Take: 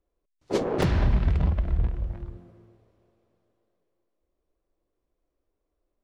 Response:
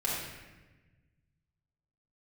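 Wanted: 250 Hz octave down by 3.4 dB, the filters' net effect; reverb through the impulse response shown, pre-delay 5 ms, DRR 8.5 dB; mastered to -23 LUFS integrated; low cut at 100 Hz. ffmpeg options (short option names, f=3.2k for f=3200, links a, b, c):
-filter_complex "[0:a]highpass=100,equalizer=f=250:t=o:g=-5,asplit=2[a][b];[1:a]atrim=start_sample=2205,adelay=5[c];[b][c]afir=irnorm=-1:irlink=0,volume=-15.5dB[d];[a][d]amix=inputs=2:normalize=0,volume=7dB"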